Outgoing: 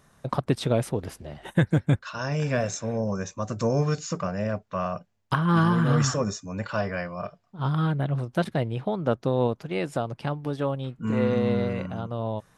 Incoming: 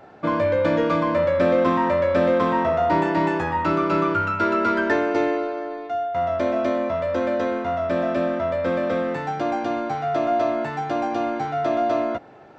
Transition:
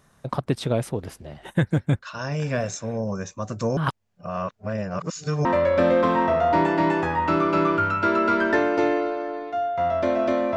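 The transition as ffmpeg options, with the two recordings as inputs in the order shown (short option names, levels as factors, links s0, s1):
-filter_complex "[0:a]apad=whole_dur=10.56,atrim=end=10.56,asplit=2[s0][s1];[s0]atrim=end=3.772[s2];[s1]atrim=start=3.768:end=5.452,asetpts=PTS-STARTPTS,areverse[s3];[1:a]atrim=start=1.818:end=6.93[s4];[s2][s3]acrossfade=d=0.004:c1=hsin:c2=hsin[s5];[s5][s4]acrossfade=d=0.004:c1=hsin:c2=hsin"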